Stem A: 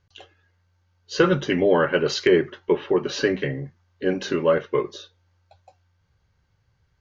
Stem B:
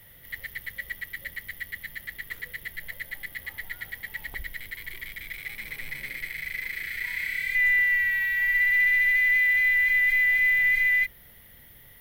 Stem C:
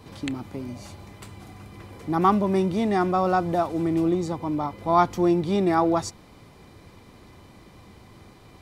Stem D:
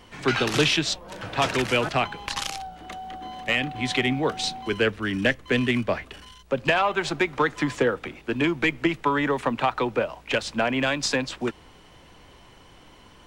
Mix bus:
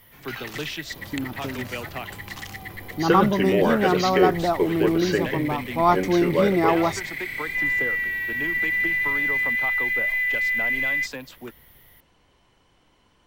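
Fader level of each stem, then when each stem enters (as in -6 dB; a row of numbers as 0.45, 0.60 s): -2.5, -2.0, +0.5, -11.0 dB; 1.90, 0.00, 0.90, 0.00 s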